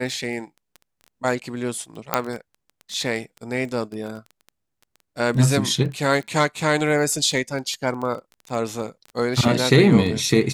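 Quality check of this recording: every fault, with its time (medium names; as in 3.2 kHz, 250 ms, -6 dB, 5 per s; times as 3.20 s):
crackle 12 per s -27 dBFS
2.14 s: pop -3 dBFS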